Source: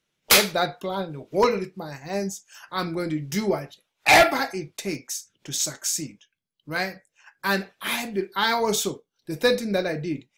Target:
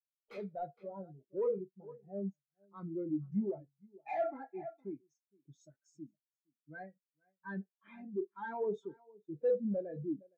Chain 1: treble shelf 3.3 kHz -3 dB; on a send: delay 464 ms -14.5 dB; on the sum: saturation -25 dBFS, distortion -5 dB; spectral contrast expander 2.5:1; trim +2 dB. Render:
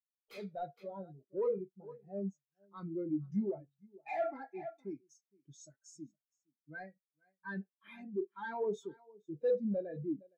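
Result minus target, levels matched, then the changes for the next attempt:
4 kHz band +8.0 dB
change: treble shelf 3.3 kHz -13 dB

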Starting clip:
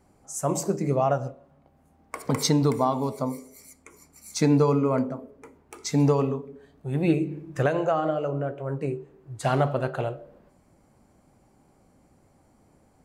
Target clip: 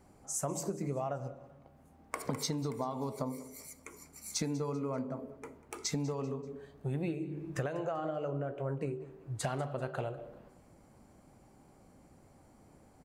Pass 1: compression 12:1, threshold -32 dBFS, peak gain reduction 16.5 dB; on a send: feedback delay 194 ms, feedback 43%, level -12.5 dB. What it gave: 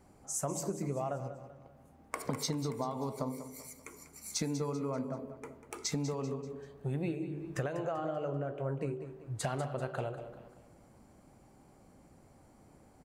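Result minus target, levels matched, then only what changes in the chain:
echo-to-direct +7 dB
change: feedback delay 194 ms, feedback 43%, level -19.5 dB

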